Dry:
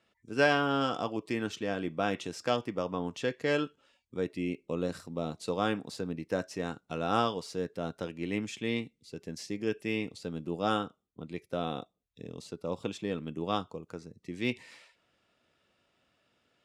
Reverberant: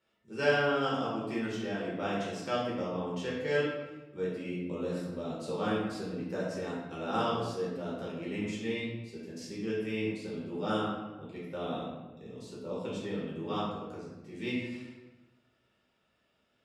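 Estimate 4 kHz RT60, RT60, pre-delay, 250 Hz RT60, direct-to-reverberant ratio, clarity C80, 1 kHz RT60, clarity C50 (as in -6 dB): 0.80 s, 1.2 s, 5 ms, 1.4 s, -7.5 dB, 3.5 dB, 1.1 s, 1.0 dB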